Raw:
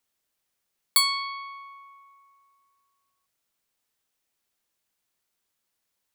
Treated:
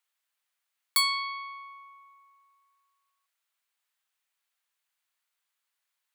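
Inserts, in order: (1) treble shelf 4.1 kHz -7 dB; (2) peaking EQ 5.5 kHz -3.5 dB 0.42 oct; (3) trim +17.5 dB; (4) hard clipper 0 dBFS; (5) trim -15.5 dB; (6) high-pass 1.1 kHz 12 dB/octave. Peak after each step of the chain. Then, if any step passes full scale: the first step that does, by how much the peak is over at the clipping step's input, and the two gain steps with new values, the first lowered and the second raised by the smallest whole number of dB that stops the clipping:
-11.0 dBFS, -11.5 dBFS, +6.0 dBFS, 0.0 dBFS, -15.5 dBFS, -12.0 dBFS; step 3, 6.0 dB; step 3 +11.5 dB, step 5 -9.5 dB

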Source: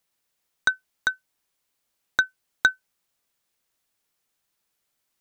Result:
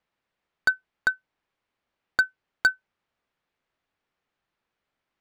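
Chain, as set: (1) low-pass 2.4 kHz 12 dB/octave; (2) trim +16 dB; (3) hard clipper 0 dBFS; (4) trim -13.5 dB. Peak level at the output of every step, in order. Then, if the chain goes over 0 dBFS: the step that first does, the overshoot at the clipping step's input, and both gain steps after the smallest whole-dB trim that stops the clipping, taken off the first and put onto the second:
-6.5 dBFS, +9.5 dBFS, 0.0 dBFS, -13.5 dBFS; step 2, 9.5 dB; step 2 +6 dB, step 4 -3.5 dB

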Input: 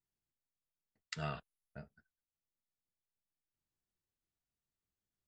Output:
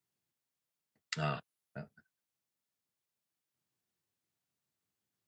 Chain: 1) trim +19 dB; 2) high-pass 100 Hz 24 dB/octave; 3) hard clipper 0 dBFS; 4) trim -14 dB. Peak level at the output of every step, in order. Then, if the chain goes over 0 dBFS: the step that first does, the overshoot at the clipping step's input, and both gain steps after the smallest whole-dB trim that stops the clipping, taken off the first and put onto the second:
-2.0 dBFS, -1.5 dBFS, -1.5 dBFS, -15.5 dBFS; nothing clips

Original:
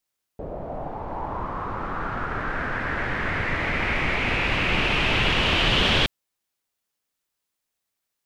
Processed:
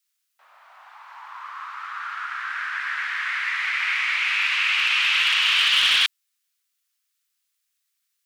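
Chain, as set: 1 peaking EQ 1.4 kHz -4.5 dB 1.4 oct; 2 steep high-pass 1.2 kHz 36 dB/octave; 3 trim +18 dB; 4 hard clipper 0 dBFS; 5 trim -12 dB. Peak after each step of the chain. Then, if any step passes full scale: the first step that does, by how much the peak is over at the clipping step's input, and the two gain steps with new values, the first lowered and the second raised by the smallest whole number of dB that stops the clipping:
-10.5 dBFS, -11.5 dBFS, +6.5 dBFS, 0.0 dBFS, -12.0 dBFS; step 3, 6.5 dB; step 3 +11 dB, step 5 -5 dB

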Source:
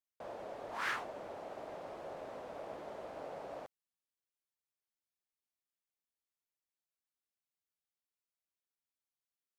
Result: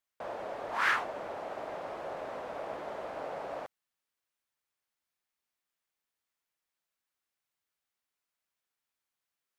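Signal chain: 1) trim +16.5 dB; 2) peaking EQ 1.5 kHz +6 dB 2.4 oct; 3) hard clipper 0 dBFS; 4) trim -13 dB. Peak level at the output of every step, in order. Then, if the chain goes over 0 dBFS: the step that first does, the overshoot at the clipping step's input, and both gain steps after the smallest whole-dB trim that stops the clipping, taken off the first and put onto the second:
-9.0 dBFS, -3.5 dBFS, -3.5 dBFS, -16.5 dBFS; nothing clips

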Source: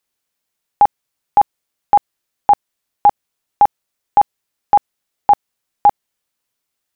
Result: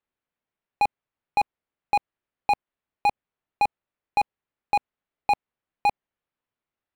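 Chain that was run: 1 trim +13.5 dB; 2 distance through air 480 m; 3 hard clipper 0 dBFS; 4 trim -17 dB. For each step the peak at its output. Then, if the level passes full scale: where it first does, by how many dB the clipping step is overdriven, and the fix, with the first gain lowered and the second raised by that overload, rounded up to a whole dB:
+9.5 dBFS, +8.0 dBFS, 0.0 dBFS, -17.0 dBFS; step 1, 8.0 dB; step 1 +5.5 dB, step 4 -9 dB

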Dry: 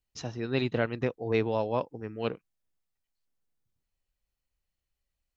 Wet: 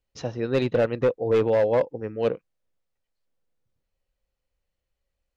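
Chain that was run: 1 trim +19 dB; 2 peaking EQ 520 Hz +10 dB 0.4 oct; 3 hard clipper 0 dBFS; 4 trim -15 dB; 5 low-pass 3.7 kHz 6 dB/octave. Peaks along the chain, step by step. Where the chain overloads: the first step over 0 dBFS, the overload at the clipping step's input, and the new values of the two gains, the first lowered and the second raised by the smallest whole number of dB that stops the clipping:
+7.0 dBFS, +8.0 dBFS, 0.0 dBFS, -15.0 dBFS, -15.0 dBFS; step 1, 8.0 dB; step 1 +11 dB, step 4 -7 dB

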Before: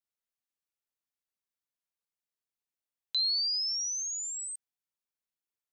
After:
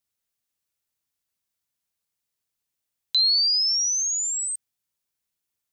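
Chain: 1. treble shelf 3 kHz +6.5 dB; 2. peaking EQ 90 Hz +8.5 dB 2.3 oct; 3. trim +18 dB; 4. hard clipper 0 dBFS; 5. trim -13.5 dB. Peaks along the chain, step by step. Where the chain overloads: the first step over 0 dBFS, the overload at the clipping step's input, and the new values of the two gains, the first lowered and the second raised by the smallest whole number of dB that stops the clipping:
-20.0 dBFS, -20.0 dBFS, -2.0 dBFS, -2.0 dBFS, -15.5 dBFS; nothing clips

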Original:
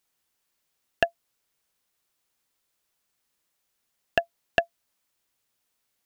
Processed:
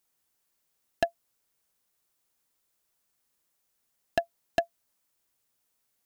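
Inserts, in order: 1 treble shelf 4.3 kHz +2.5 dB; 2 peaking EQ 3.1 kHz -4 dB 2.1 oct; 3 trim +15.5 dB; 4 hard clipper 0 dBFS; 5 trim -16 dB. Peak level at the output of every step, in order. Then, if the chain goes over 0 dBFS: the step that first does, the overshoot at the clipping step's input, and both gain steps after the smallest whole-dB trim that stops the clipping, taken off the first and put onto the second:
-3.0 dBFS, -5.5 dBFS, +10.0 dBFS, 0.0 dBFS, -16.0 dBFS; step 3, 10.0 dB; step 3 +5.5 dB, step 5 -6 dB

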